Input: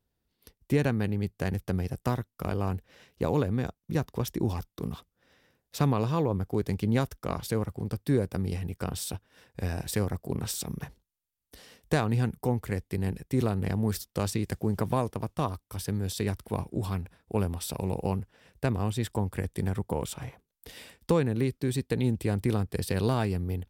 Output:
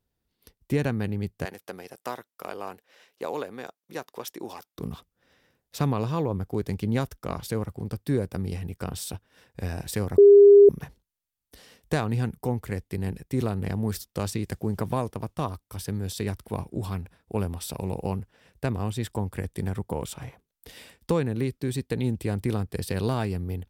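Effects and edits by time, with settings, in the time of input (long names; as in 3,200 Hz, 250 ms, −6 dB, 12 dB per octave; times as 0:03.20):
0:01.45–0:04.75: high-pass filter 470 Hz
0:10.18–0:10.69: beep over 404 Hz −8.5 dBFS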